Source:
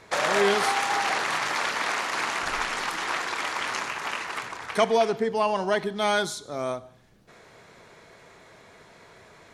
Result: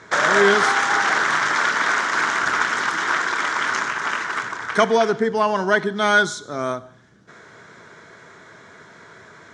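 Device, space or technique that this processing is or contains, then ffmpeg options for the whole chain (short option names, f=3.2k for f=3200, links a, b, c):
car door speaker: -af "highpass=100,equalizer=f=530:t=q:w=4:g=-5,equalizer=f=770:t=q:w=4:g=-6,equalizer=f=1.5k:t=q:w=4:g=7,equalizer=f=2.6k:t=q:w=4:g=-9,equalizer=f=4.4k:t=q:w=4:g=-6,lowpass=f=7.4k:w=0.5412,lowpass=f=7.4k:w=1.3066,volume=7dB"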